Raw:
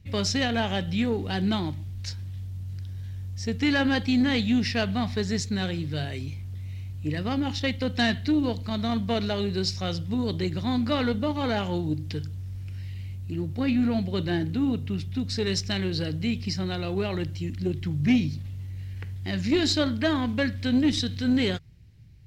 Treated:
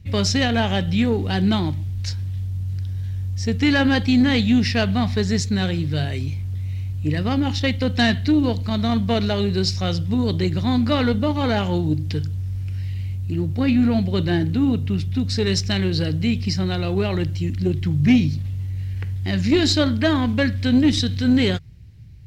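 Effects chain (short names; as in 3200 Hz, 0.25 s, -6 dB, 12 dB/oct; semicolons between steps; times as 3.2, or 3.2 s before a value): bell 74 Hz +4.5 dB 2.2 oct; gain +5 dB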